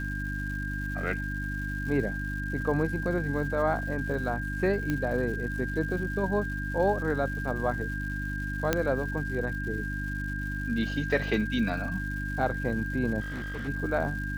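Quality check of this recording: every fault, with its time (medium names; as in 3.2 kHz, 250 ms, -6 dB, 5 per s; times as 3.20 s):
crackle 350 per s -40 dBFS
hum 50 Hz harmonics 6 -34 dBFS
whine 1.6 kHz -35 dBFS
4.90 s: pop -17 dBFS
8.73 s: pop -9 dBFS
13.20–13.69 s: clipped -32 dBFS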